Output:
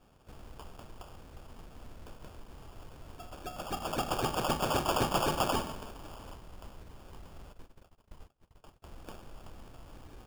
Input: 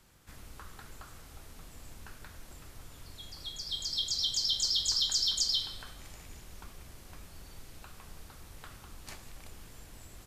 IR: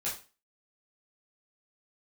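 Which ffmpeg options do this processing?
-filter_complex "[0:a]asettb=1/sr,asplit=3[link_01][link_02][link_03];[link_01]atrim=end=5.694[link_04];[link_02]atrim=start=5.69:end=6.36,asetpts=PTS-STARTPTS,afade=type=in:duration=0.004:curve=qsin,afade=type=out:start_time=0.666:duration=0.004:curve=qsin,highshelf=frequency=6200:gain=11[link_05];[link_03]atrim=start=6.356[link_06];[link_04][link_05]acrossfade=duration=0.004:curve1=hsin:curve2=qsin[link_07];[link_07][link_06]acrossfade=duration=0.004:curve1=qsin:curve2=hsin,asplit=3[link_08][link_09][link_10];[link_08]afade=type=out:start_time=7.52:duration=0.02[link_11];[link_09]agate=range=-33dB:threshold=-45dB:ratio=16:detection=peak,afade=type=in:start_time=7.52:duration=0.02,afade=type=out:start_time=8.82:duration=0.02[link_12];[link_10]afade=type=in:start_time=8.82:duration=0.02[link_13];[link_11][link_12][link_13]amix=inputs=3:normalize=0,acrusher=samples=22:mix=1:aa=0.000001"

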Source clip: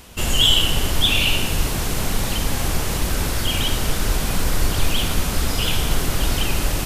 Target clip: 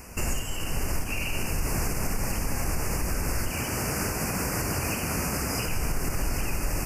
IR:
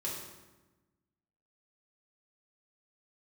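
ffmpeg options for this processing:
-filter_complex "[0:a]asettb=1/sr,asplit=3[link_01][link_02][link_03];[link_01]atrim=end=3.514[link_04];[link_02]atrim=start=3.51:end=5.66,asetpts=PTS-STARTPTS,afade=type=in:duration=0.004:curve=qsin,afade=type=out:start_time=2.146:duration=0.004:curve=qsin,highpass=87[link_05];[link_03]atrim=start=5.656[link_06];[link_04][link_05]acrossfade=duration=0.004:curve1=hsin:curve2=qsin[link_07];[link_07][link_06]acrossfade=duration=0.004:curve1=qsin:curve2=hsin,alimiter=limit=-17.5dB:level=0:latency=1:release=200,asuperstop=centerf=3600:order=8:qfactor=1.8"

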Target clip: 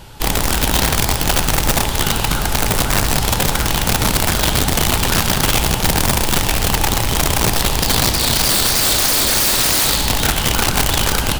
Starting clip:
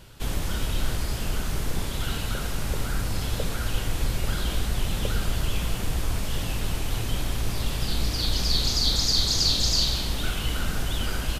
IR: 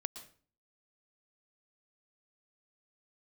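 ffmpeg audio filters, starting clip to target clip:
-filter_complex "[0:a]equalizer=frequency=850:width_type=o:width=0.25:gain=11.5,aeval=exprs='(mod(10*val(0)+1,2)-1)/10':channel_layout=same,asplit=2[link_01][link_02];[1:a]atrim=start_sample=2205[link_03];[link_02][link_03]afir=irnorm=-1:irlink=0,volume=6.5dB[link_04];[link_01][link_04]amix=inputs=2:normalize=0,volume=1dB"

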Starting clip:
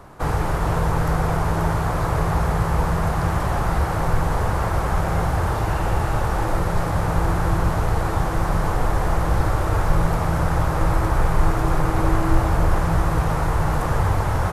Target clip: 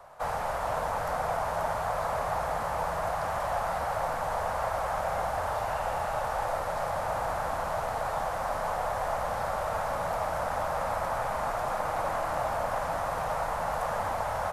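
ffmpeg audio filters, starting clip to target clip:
ffmpeg -i in.wav -filter_complex "[0:a]lowshelf=frequency=450:width_type=q:width=3:gain=-10.5,acrossover=split=270|900[link_01][link_02][link_03];[link_01]aeval=exprs='0.0335*(abs(mod(val(0)/0.0335+3,4)-2)-1)':channel_layout=same[link_04];[link_04][link_02][link_03]amix=inputs=3:normalize=0,volume=-7.5dB" out.wav

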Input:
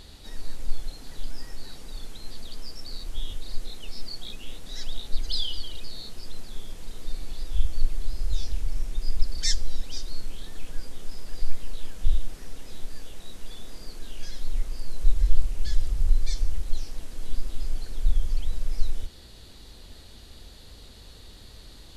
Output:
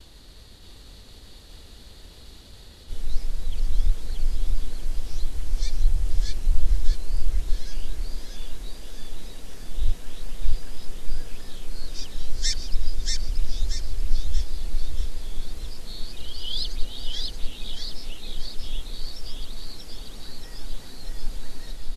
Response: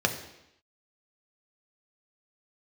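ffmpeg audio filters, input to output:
-af "areverse,agate=range=-33dB:threshold=-44dB:ratio=3:detection=peak,aecho=1:1:632|1264|1896|2528|3160|3792:0.708|0.304|0.131|0.0563|0.0242|0.0104"

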